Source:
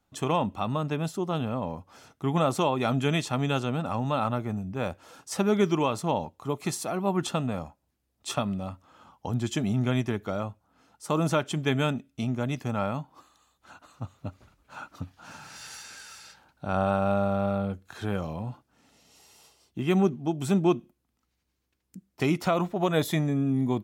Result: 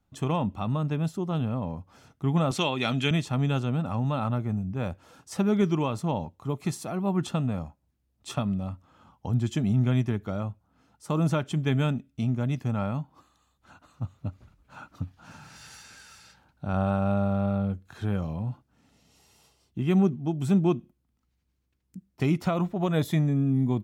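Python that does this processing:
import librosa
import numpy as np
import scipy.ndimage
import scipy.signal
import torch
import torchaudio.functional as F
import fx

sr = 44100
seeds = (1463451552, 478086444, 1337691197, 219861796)

y = fx.weighting(x, sr, curve='D', at=(2.51, 3.11))
y = fx.bass_treble(y, sr, bass_db=9, treble_db=-2)
y = y * librosa.db_to_amplitude(-4.0)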